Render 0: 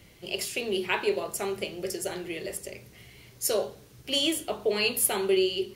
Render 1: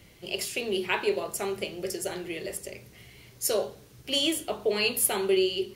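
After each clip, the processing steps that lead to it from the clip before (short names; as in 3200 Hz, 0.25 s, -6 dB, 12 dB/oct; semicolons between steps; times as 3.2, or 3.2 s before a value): nothing audible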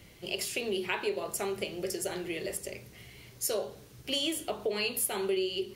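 compressor 2.5:1, threshold -30 dBFS, peak gain reduction 8 dB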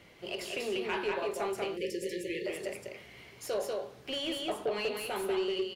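echo 0.191 s -3.5 dB; overdrive pedal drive 17 dB, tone 1300 Hz, clips at -14.5 dBFS; spectral delete 1.77–2.46, 560–1700 Hz; gain -5.5 dB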